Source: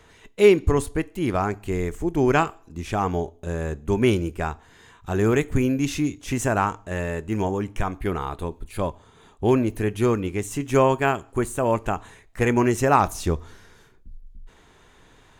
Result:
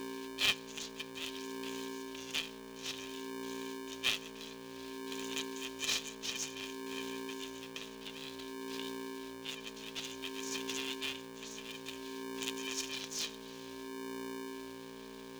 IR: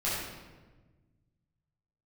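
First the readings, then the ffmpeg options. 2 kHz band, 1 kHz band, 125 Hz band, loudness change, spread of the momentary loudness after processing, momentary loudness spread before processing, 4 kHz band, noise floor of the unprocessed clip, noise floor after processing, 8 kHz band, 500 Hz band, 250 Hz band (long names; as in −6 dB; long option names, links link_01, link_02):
−11.0 dB, −22.0 dB, −32.0 dB, −16.0 dB, 11 LU, 11 LU, +2.5 dB, −54 dBFS, −49 dBFS, −5.5 dB, −21.5 dB, −19.0 dB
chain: -af "acrusher=bits=7:mix=0:aa=0.5,aeval=exprs='0.708*(cos(1*acos(clip(val(0)/0.708,-1,1)))-cos(1*PI/2))+0.0355*(cos(3*acos(clip(val(0)/0.708,-1,1)))-cos(3*PI/2))+0.00501*(cos(5*acos(clip(val(0)/0.708,-1,1)))-cos(5*PI/2))':channel_layout=same,afftfilt=real='re*between(b*sr/4096,2700,6900)':imag='im*between(b*sr/4096,2700,6900)':win_size=4096:overlap=0.75,aeval=exprs='val(0)+0.000708*(sin(2*PI*60*n/s)+sin(2*PI*2*60*n/s)/2+sin(2*PI*3*60*n/s)/3+sin(2*PI*4*60*n/s)/4+sin(2*PI*5*60*n/s)/5)':channel_layout=same,flanger=delay=0.6:depth=6.2:regen=31:speed=0.56:shape=sinusoidal,aemphasis=mode=reproduction:type=bsi,aeval=exprs='val(0)*sgn(sin(2*PI*330*n/s))':channel_layout=same,volume=10.5dB"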